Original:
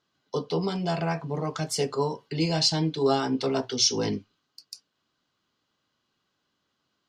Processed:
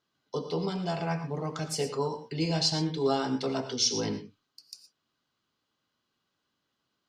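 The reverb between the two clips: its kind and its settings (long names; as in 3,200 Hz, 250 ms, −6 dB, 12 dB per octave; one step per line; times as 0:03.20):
reverb whose tail is shaped and stops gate 140 ms rising, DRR 9 dB
level −4 dB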